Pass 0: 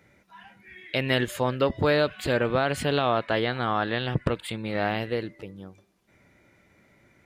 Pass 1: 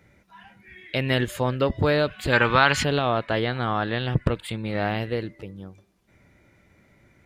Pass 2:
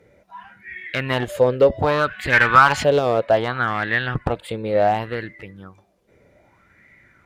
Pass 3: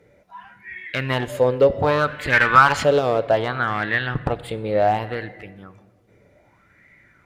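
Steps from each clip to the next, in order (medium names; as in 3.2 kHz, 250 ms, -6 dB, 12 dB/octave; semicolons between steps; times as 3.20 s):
time-frequency box 2.33–2.84 s, 810–7500 Hz +11 dB; bass shelf 120 Hz +9 dB
one-sided clip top -18 dBFS; sweeping bell 0.65 Hz 460–2000 Hz +16 dB; trim -1.5 dB
simulated room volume 1600 m³, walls mixed, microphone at 0.36 m; trim -1 dB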